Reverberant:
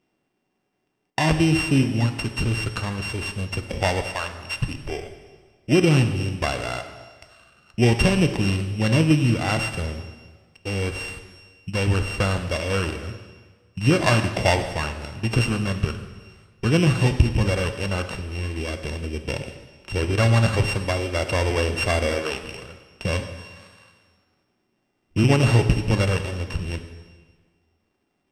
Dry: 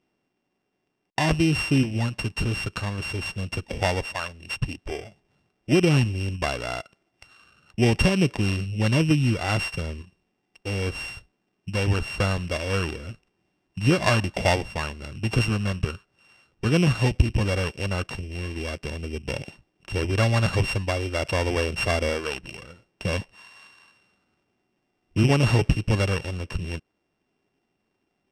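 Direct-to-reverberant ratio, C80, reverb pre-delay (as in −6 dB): 7.0 dB, 10.5 dB, 6 ms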